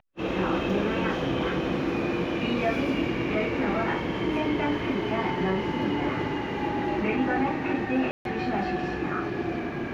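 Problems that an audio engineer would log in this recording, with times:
8.11–8.25 gap 0.142 s

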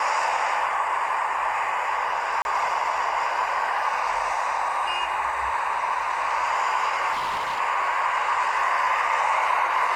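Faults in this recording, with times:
2.42–2.45 gap 31 ms
7.12–7.6 clipped -23.5 dBFS

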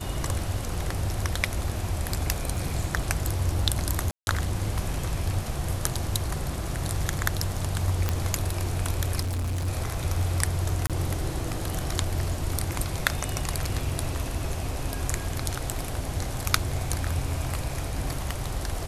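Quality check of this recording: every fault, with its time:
2.56 gap 2.5 ms
4.11–4.27 gap 0.161 s
8.09 pop -10 dBFS
9.2–9.68 clipped -25.5 dBFS
10.87–10.9 gap 27 ms

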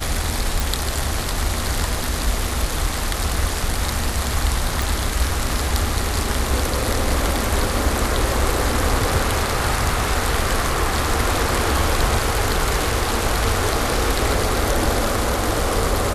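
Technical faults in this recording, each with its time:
0.6 pop
4.82 pop

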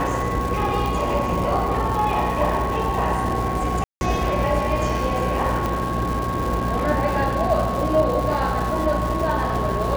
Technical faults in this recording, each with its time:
buzz 60 Hz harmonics 17 -27 dBFS
crackle 420/s -27 dBFS
tone 1100 Hz -26 dBFS
0.86 pop
3.84–4.01 gap 0.171 s
5.66 pop

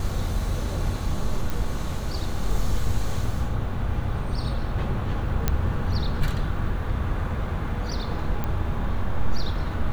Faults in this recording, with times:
1.5 pop
5.48 pop -7 dBFS
8.44 pop -15 dBFS

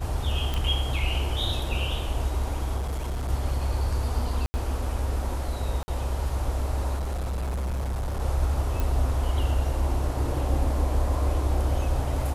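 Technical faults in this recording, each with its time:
0.54 pop
2.76–3.3 clipped -25.5 dBFS
4.46–4.54 gap 80 ms
5.83–5.88 gap 50 ms
6.96–8.21 clipped -25.5 dBFS
8.8 pop

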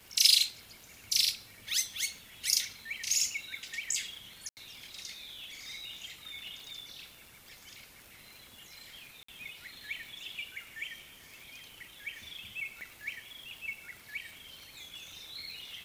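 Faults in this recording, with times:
crackle 88/s -42 dBFS
4.49–4.57 gap 79 ms
9.23–9.28 gap 54 ms
12.81 pop

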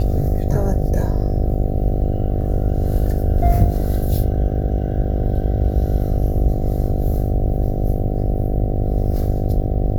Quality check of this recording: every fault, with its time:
buzz 50 Hz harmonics 15 -22 dBFS

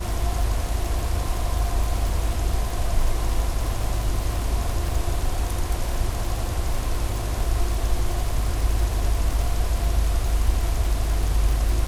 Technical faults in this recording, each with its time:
crackle 53/s -26 dBFS

